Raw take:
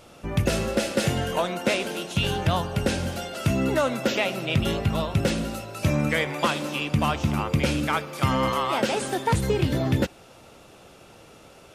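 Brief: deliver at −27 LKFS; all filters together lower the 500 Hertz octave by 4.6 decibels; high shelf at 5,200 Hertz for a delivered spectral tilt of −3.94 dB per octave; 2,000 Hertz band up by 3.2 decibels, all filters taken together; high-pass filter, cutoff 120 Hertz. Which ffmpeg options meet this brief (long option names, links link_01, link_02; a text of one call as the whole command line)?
ffmpeg -i in.wav -af "highpass=120,equalizer=frequency=500:width_type=o:gain=-6,equalizer=frequency=2000:width_type=o:gain=3.5,highshelf=frequency=5200:gain=5.5,volume=-1.5dB" out.wav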